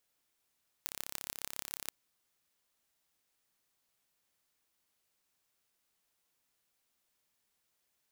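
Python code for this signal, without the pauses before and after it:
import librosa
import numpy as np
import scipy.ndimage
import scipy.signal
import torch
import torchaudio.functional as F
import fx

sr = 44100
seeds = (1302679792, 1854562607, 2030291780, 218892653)

y = fx.impulse_train(sr, length_s=1.05, per_s=34.1, accent_every=5, level_db=-8.5)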